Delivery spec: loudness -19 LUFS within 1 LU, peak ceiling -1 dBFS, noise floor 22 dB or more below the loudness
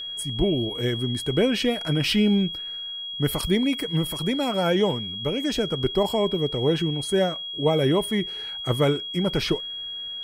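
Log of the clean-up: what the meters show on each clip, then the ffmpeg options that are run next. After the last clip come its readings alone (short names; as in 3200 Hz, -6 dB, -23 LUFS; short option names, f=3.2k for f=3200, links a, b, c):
steady tone 3300 Hz; tone level -31 dBFS; loudness -24.0 LUFS; peak -10.0 dBFS; loudness target -19.0 LUFS
-> -af "bandreject=f=3.3k:w=30"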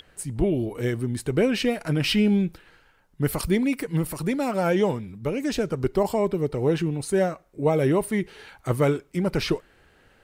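steady tone none; loudness -25.0 LUFS; peak -10.5 dBFS; loudness target -19.0 LUFS
-> -af "volume=6dB"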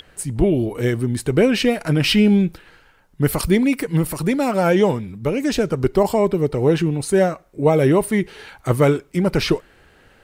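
loudness -19.0 LUFS; peak -4.5 dBFS; noise floor -53 dBFS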